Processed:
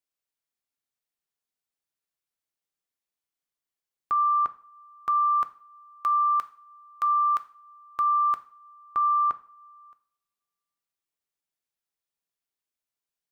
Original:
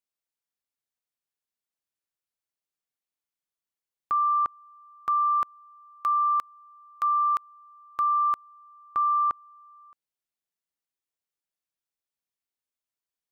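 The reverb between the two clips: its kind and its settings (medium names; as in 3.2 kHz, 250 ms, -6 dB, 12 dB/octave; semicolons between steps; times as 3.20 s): two-slope reverb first 0.43 s, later 1.8 s, from -27 dB, DRR 11 dB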